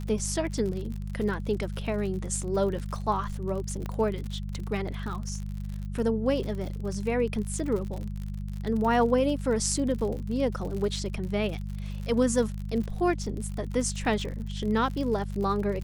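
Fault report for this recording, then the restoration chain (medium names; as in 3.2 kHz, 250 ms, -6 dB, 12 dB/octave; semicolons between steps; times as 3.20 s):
crackle 60 per s -34 dBFS
hum 50 Hz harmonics 4 -34 dBFS
3.86 s: pop -21 dBFS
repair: de-click; de-hum 50 Hz, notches 4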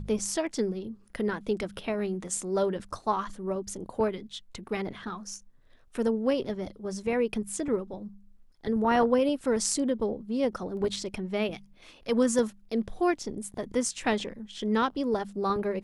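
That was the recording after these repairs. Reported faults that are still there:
3.86 s: pop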